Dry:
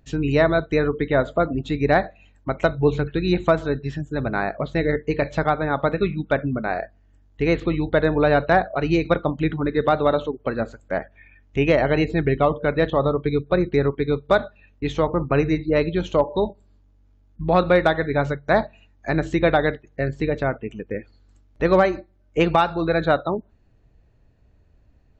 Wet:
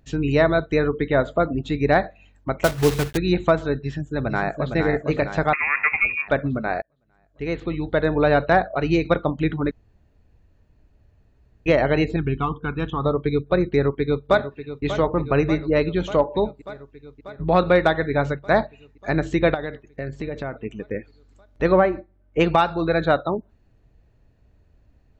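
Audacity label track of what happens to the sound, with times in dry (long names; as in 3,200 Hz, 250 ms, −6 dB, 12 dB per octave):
2.640000	3.190000	one scale factor per block 3 bits
3.810000	4.730000	delay throw 460 ms, feedback 60%, level −5.5 dB
5.530000	6.280000	voice inversion scrambler carrier 2,600 Hz
6.820000	8.270000	fade in
9.710000	11.660000	fill with room tone
12.160000	13.050000	phaser with its sweep stopped centre 2,900 Hz, stages 8
13.710000	14.840000	delay throw 590 ms, feedback 75%, level −11.5 dB
19.540000	20.650000	downward compressor 4 to 1, threshold −26 dBFS
21.710000	22.380000	low-pass filter 1,800 Hz → 2,600 Hz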